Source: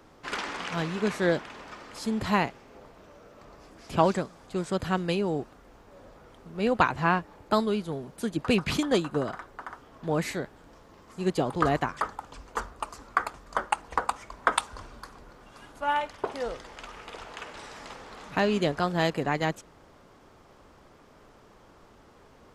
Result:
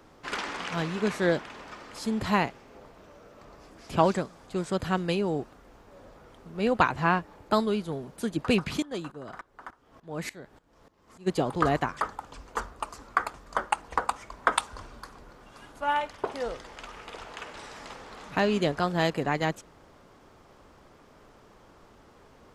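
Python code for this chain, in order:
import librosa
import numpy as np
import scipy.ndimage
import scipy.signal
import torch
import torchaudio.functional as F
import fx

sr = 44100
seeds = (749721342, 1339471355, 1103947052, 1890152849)

y = fx.tremolo_decay(x, sr, direction='swelling', hz=3.4, depth_db=19, at=(8.67, 11.26), fade=0.02)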